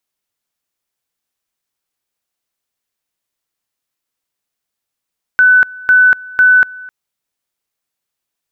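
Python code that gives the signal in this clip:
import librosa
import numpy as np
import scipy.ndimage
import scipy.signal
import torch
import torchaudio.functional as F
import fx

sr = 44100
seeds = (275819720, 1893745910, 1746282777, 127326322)

y = fx.two_level_tone(sr, hz=1500.0, level_db=-4.5, drop_db=23.0, high_s=0.24, low_s=0.26, rounds=3)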